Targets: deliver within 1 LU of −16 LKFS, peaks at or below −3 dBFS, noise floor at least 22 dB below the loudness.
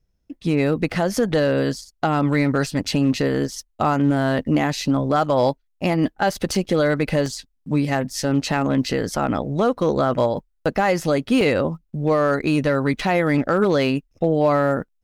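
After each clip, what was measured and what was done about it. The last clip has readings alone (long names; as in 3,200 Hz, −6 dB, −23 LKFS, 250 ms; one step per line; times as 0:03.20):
share of clipped samples 1.1%; peaks flattened at −10.0 dBFS; number of dropouts 3; longest dropout 1.5 ms; integrated loudness −21.0 LKFS; sample peak −10.0 dBFS; target loudness −16.0 LKFS
→ clipped peaks rebuilt −10 dBFS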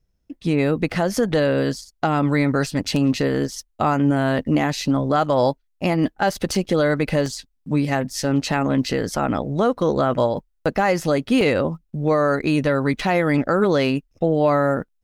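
share of clipped samples 0.0%; number of dropouts 3; longest dropout 1.5 ms
→ repair the gap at 0:06.55/0:07.26/0:11.41, 1.5 ms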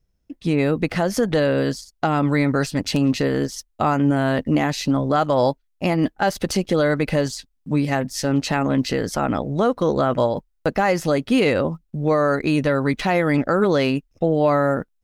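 number of dropouts 0; integrated loudness −21.0 LKFS; sample peak −5.5 dBFS; target loudness −16.0 LKFS
→ level +5 dB
brickwall limiter −3 dBFS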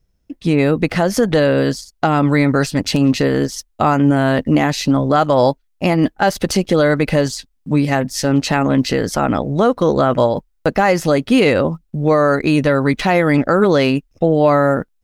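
integrated loudness −16.0 LKFS; sample peak −3.0 dBFS; background noise floor −63 dBFS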